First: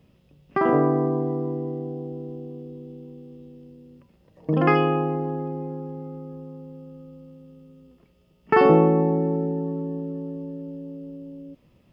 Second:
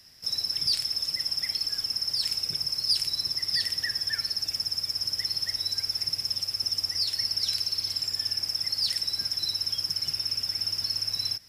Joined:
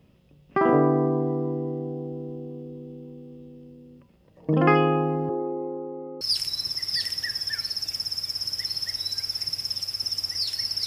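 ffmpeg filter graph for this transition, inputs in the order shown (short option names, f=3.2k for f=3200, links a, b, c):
-filter_complex "[0:a]asettb=1/sr,asplit=3[a][b][c];[a]atrim=end=5.294[d];[b]atrim=start=5.29:end=6.21,asetpts=PTS-STARTPTS,afade=t=in:d=0.004:c=qsin,afade=t=out:st=0.916:d=0.004:c=qsin,highpass=f=240:w=0.5412,highpass=f=240:w=1.3066,equalizer=f=260:t=q:w=4:g=-3,equalizer=f=370:t=q:w=4:g=7,equalizer=f=580:t=q:w=4:g=3,equalizer=f=1k:t=q:w=4:g=4,equalizer=f=1.7k:t=q:w=4:g=-10,lowpass=f=2.1k:w=0.5412,lowpass=f=2.1k:w=1.3066[e];[c]atrim=start=6.206[f];[d][e]acrossfade=d=0.004:c1=hsin:c2=qsin[g];[g][f]acrossfade=d=0.004:c1=qsin:c2=hsin,apad=whole_dur=10.86,atrim=end=10.86,atrim=end=6.212[h];[1:a]atrim=start=2.808:end=7.46[i];[h][i]acrossfade=d=0.004:c1=hsin:c2=hsin"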